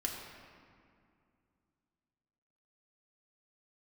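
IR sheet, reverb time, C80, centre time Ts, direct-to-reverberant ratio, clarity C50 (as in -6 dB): 2.3 s, 3.5 dB, 79 ms, -2.0 dB, 2.5 dB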